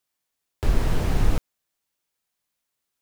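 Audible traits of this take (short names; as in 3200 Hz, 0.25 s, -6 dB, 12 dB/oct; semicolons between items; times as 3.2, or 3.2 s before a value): noise floor -81 dBFS; spectral tilt -6.0 dB/oct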